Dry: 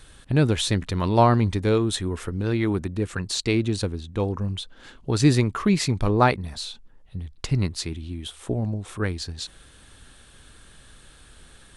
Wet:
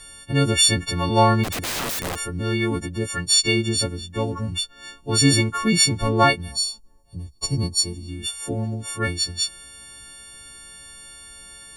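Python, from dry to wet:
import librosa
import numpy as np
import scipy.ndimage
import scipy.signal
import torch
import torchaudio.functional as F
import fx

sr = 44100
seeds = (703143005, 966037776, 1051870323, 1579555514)

y = fx.freq_snap(x, sr, grid_st=4)
y = fx.overflow_wrap(y, sr, gain_db=22.0, at=(1.43, 2.18), fade=0.02)
y = fx.spec_box(y, sr, start_s=6.52, length_s=1.57, low_hz=1300.0, high_hz=3600.0, gain_db=-15)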